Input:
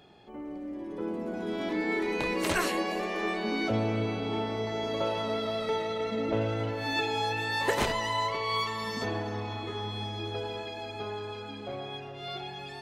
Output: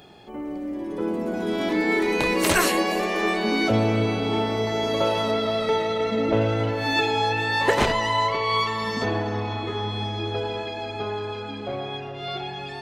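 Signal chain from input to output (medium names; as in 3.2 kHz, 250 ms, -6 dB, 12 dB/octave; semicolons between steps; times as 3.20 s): treble shelf 7.8 kHz +8 dB, from 5.31 s -2.5 dB, from 7.11 s -11 dB; trim +7.5 dB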